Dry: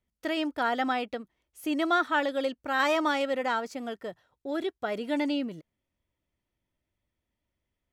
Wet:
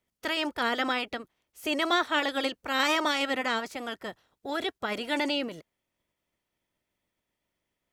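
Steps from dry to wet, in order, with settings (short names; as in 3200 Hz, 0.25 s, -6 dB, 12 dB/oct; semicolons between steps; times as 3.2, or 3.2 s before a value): spectral limiter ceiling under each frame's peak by 15 dB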